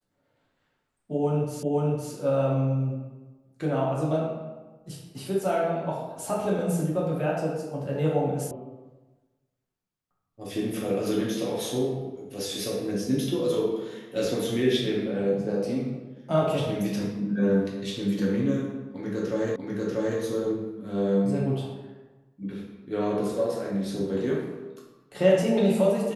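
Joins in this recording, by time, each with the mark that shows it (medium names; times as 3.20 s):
1.63 s: repeat of the last 0.51 s
8.51 s: sound stops dead
19.56 s: repeat of the last 0.64 s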